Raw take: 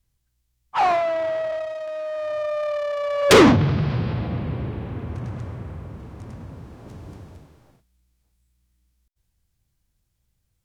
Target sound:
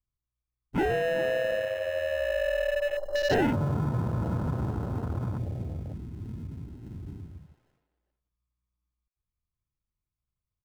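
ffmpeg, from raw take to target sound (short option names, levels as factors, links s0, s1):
-filter_complex "[0:a]lowpass=f=1200:w=0.5412,lowpass=f=1200:w=1.3066,acrusher=samples=38:mix=1:aa=0.000001,acompressor=threshold=0.0562:ratio=4,asplit=2[s0][s1];[s1]adelay=400,highpass=300,lowpass=3400,asoftclip=type=hard:threshold=0.0447,volume=0.316[s2];[s0][s2]amix=inputs=2:normalize=0,afwtdn=0.0178"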